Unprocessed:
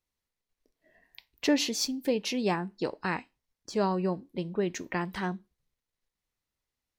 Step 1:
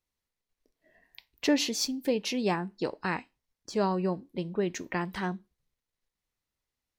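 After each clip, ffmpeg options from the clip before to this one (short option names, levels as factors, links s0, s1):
-af anull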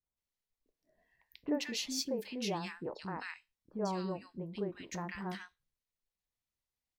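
-filter_complex "[0:a]acrossover=split=340|1400[s0][s1][s2];[s1]adelay=30[s3];[s2]adelay=170[s4];[s0][s3][s4]amix=inputs=3:normalize=0,volume=0.473"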